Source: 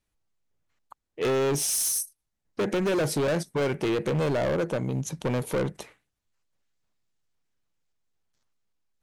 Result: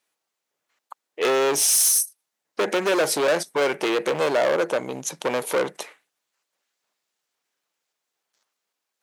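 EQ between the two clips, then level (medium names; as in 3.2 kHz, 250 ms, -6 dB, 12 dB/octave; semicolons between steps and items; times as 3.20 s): high-pass 480 Hz 12 dB/octave; +8.0 dB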